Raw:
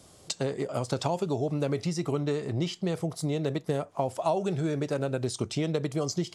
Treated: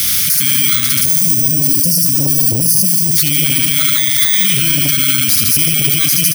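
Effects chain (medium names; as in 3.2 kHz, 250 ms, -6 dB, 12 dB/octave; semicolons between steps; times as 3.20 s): bit-reversed sample order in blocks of 16 samples; elliptic band-stop 270–1300 Hz, stop band 40 dB; tilt shelf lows -10 dB, about 1.2 kHz; time-frequency box 0.99–3.18 s, 670–4300 Hz -19 dB; bass shelf 140 Hz +2.5 dB; on a send: feedback delay 76 ms, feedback 55%, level -6.5 dB; on the sum: loudness maximiser +35 dB; transformer saturation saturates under 590 Hz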